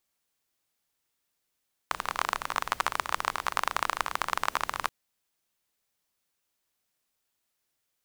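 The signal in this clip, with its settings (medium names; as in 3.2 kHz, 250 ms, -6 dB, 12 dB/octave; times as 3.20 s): rain from filtered ticks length 2.98 s, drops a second 27, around 1.1 kHz, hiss -17 dB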